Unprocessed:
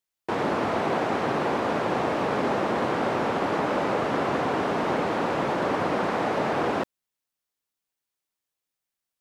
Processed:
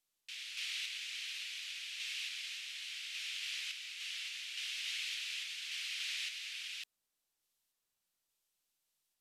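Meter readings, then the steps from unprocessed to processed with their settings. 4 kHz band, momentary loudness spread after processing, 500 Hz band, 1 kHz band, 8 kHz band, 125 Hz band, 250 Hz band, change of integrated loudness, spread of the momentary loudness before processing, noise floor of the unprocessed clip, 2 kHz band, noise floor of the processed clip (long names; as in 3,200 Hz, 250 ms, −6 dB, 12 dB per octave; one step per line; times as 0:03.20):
+1.5 dB, 5 LU, below −40 dB, below −40 dB, +2.0 dB, below −40 dB, below −40 dB, −14.0 dB, 1 LU, below −85 dBFS, −10.5 dB, below −85 dBFS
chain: Butterworth high-pass 2,600 Hz 36 dB per octave
sample-and-hold tremolo
level +5 dB
SBC 128 kbit/s 32,000 Hz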